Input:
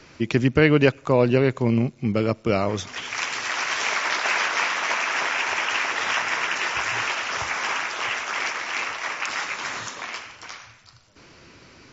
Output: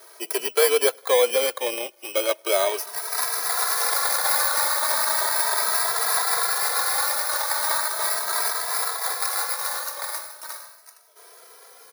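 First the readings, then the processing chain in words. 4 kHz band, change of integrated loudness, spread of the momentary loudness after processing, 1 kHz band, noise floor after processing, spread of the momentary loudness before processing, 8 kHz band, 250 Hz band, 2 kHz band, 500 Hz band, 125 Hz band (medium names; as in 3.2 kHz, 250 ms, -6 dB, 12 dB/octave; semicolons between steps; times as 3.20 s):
+2.0 dB, +1.5 dB, 9 LU, +1.0 dB, -51 dBFS, 10 LU, no reading, under -15 dB, -5.0 dB, 0.0 dB, under -40 dB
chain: bit-reversed sample order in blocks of 16 samples; steep high-pass 450 Hz 36 dB/octave; in parallel at +1.5 dB: peak limiter -14 dBFS, peak gain reduction 9 dB; on the sum: vibrato 6.8 Hz 21 cents; endless flanger 2.7 ms +0.37 Hz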